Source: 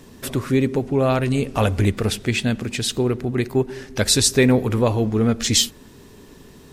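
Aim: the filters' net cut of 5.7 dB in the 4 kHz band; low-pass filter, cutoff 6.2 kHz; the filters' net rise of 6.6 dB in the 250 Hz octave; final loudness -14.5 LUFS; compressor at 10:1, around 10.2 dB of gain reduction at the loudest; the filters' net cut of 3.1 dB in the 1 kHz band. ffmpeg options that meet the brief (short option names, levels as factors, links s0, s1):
-af "lowpass=6200,equalizer=f=250:t=o:g=7.5,equalizer=f=1000:t=o:g=-4.5,equalizer=f=4000:t=o:g=-6,acompressor=threshold=0.141:ratio=10,volume=2.66"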